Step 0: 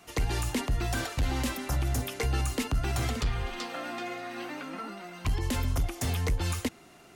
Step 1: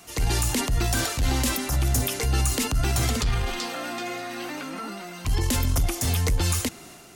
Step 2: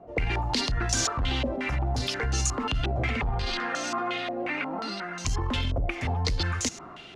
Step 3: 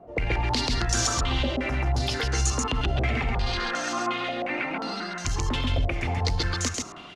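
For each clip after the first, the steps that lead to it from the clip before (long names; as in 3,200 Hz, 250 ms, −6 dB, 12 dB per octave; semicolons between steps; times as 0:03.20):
bass and treble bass +2 dB, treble +8 dB; transient designer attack −5 dB, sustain +4 dB; level +4 dB
downward compressor 2 to 1, threshold −28 dBFS, peak gain reduction 5.5 dB; low-pass on a step sequencer 5.6 Hz 600–6,300 Hz
downsampling to 32,000 Hz; single-tap delay 135 ms −3 dB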